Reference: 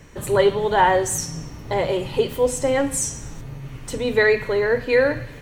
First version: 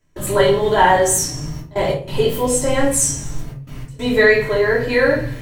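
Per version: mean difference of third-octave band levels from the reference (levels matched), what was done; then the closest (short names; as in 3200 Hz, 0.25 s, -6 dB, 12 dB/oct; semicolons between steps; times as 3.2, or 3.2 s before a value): 4.5 dB: high shelf 6000 Hz +7.5 dB; step gate ".xxxxxxxxx.x" 94 bpm -24 dB; shoebox room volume 310 m³, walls furnished, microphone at 2.9 m; gain -1.5 dB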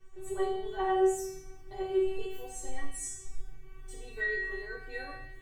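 7.5 dB: low shelf 200 Hz +7 dB; resonator 380 Hz, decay 0.56 s, mix 100%; shoebox room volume 53 m³, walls mixed, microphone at 0.57 m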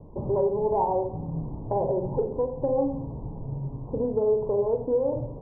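12.0 dB: steep low-pass 1000 Hz 72 dB/oct; compressor, threshold -23 dBFS, peak gain reduction 10.5 dB; Schroeder reverb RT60 0.46 s, combs from 29 ms, DRR 5 dB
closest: first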